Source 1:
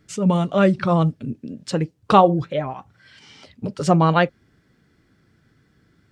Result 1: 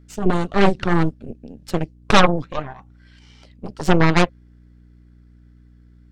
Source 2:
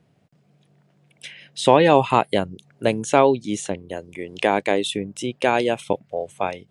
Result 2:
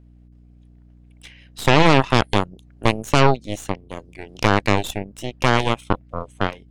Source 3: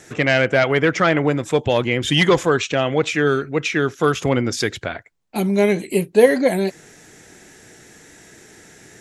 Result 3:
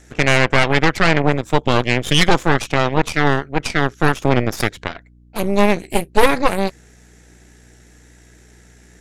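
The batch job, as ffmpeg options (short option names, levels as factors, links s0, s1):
-af "aeval=exprs='val(0)+0.00891*(sin(2*PI*60*n/s)+sin(2*PI*2*60*n/s)/2+sin(2*PI*3*60*n/s)/3+sin(2*PI*4*60*n/s)/4+sin(2*PI*5*60*n/s)/5)':c=same,aeval=exprs='0.944*(cos(1*acos(clip(val(0)/0.944,-1,1)))-cos(1*PI/2))+0.473*(cos(6*acos(clip(val(0)/0.944,-1,1)))-cos(6*PI/2))+0.0266*(cos(7*acos(clip(val(0)/0.944,-1,1)))-cos(7*PI/2))':c=same,volume=0.596"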